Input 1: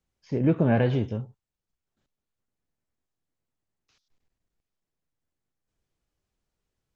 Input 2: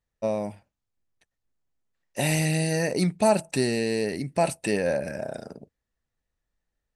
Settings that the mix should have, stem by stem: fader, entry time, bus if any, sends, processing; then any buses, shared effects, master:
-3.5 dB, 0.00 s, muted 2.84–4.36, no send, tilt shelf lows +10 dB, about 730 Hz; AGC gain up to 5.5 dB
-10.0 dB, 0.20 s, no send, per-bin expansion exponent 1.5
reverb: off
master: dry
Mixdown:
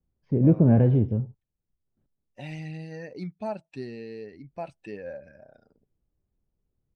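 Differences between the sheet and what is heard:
stem 1: missing AGC gain up to 5.5 dB; master: extra air absorption 220 m

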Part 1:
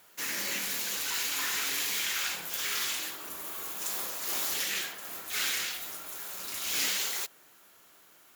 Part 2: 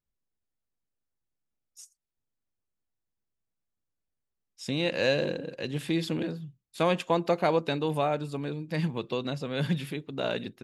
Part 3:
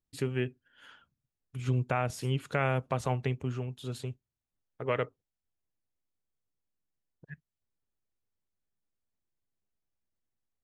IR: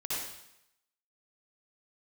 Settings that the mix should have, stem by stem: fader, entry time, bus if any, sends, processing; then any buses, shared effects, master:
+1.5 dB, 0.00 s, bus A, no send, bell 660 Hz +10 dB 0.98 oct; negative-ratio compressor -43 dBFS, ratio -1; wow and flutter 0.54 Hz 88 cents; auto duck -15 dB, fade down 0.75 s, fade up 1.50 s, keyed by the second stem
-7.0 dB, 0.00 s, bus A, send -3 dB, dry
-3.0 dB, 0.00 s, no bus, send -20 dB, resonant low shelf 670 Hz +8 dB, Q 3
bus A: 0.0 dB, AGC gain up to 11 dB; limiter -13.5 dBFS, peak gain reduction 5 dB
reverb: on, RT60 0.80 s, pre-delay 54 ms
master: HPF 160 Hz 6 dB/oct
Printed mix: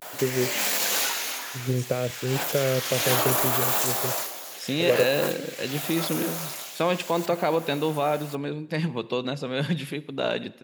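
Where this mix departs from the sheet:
stem 1 +1.5 dB -> +9.5 dB; reverb return -9.5 dB

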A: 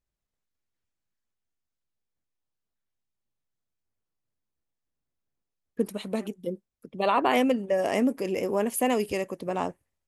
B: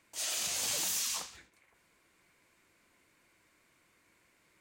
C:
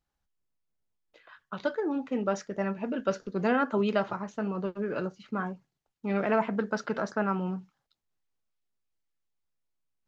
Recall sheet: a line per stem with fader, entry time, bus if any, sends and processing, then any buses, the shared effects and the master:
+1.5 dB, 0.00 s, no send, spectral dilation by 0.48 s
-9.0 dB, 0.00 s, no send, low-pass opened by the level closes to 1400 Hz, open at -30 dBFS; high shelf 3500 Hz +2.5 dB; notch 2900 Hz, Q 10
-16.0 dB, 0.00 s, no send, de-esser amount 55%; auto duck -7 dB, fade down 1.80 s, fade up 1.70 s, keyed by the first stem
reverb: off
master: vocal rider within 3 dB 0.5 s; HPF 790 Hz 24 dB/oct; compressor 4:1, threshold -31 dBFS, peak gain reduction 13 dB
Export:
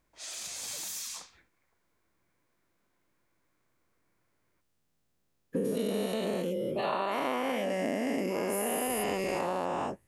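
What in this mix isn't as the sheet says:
stem C: muted; master: missing HPF 790 Hz 24 dB/oct

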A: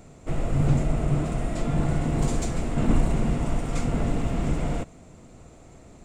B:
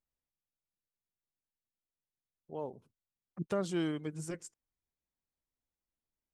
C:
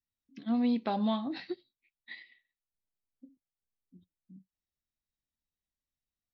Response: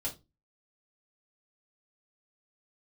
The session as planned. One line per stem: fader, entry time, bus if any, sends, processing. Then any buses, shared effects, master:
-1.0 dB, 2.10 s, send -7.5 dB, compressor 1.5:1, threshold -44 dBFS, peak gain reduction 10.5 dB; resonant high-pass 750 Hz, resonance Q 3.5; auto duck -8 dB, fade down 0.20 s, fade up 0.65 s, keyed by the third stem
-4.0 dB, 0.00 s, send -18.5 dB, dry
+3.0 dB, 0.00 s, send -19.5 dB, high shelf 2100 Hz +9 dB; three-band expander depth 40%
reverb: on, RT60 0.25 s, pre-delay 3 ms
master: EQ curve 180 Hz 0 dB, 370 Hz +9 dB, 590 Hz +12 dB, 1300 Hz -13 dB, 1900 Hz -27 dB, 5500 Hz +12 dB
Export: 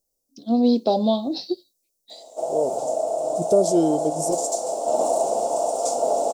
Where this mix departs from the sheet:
stem A: missing compressor 1.5:1, threshold -44 dBFS, peak gain reduction 10.5 dB; stem B -4.0 dB -> +6.0 dB; stem C: send off

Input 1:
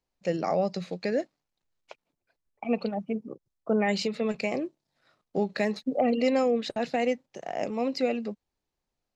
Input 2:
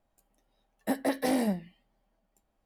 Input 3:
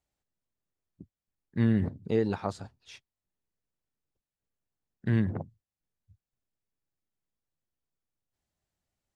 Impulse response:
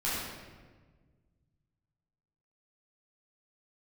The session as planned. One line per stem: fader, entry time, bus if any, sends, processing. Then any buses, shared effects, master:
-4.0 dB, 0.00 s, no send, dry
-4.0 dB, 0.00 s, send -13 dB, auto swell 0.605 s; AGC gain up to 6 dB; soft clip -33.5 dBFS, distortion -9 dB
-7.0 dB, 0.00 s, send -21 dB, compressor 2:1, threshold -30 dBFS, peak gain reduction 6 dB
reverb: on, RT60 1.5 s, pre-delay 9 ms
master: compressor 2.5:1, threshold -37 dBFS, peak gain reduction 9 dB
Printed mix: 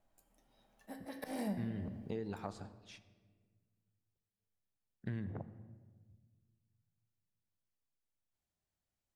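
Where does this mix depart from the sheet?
stem 1: muted; stem 2: missing soft clip -33.5 dBFS, distortion -9 dB

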